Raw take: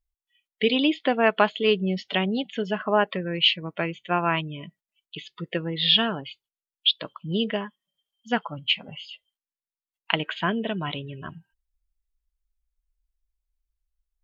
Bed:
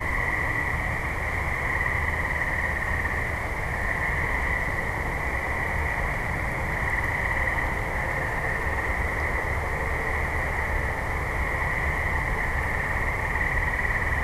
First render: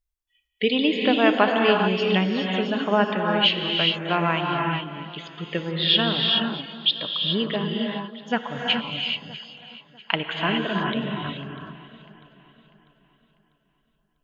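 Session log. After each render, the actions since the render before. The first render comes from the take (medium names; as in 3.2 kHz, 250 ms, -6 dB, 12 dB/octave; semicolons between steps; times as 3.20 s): echo whose repeats swap between lows and highs 323 ms, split 1.5 kHz, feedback 61%, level -13 dB; gated-style reverb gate 450 ms rising, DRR 1 dB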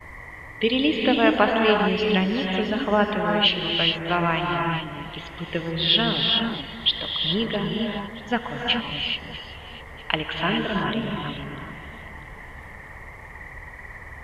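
add bed -14.5 dB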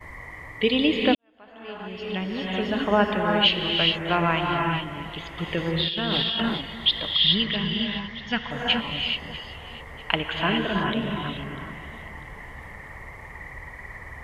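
1.15–2.81 s: fade in quadratic; 5.38–6.58 s: compressor with a negative ratio -25 dBFS; 7.15–8.51 s: FFT filter 200 Hz 0 dB, 300 Hz -6 dB, 550 Hz -9 dB, 1.4 kHz -2 dB, 2.5 kHz +5 dB, 5.5 kHz +7 dB, 8.7 kHz -23 dB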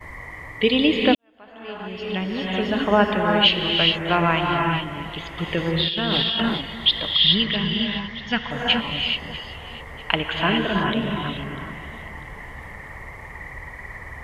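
trim +3 dB; peak limiter -2 dBFS, peak gain reduction 1 dB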